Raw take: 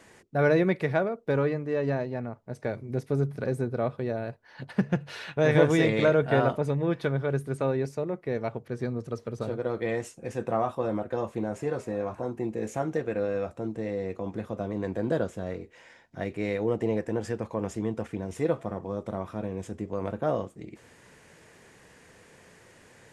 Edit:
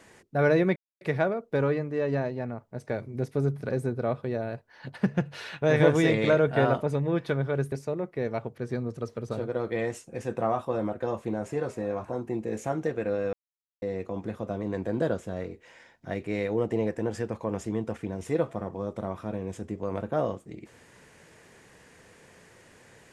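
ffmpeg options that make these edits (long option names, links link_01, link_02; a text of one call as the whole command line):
ffmpeg -i in.wav -filter_complex "[0:a]asplit=5[link_01][link_02][link_03][link_04][link_05];[link_01]atrim=end=0.76,asetpts=PTS-STARTPTS,afade=type=out:start_time=0.756:duration=0.004:curve=hsin,apad=pad_dur=0.25[link_06];[link_02]atrim=start=0.76:end=7.472,asetpts=PTS-STARTPTS,afade=type=in:duration=0.004:curve=hsin[link_07];[link_03]atrim=start=7.818:end=13.43,asetpts=PTS-STARTPTS,afade=type=out:start_time=5.608:duration=0.004:curve=hsin[link_08];[link_04]atrim=start=13.43:end=13.92,asetpts=PTS-STARTPTS,volume=0[link_09];[link_05]atrim=start=13.92,asetpts=PTS-STARTPTS,afade=type=in:duration=0.004:curve=hsin[link_10];[link_06][link_07]concat=n=2:v=0:a=1[link_11];[link_08][link_09][link_10]concat=n=3:v=0:a=1[link_12];[link_11][link_12]acrossfade=duration=0.004:curve1=hsin:curve2=hsin" out.wav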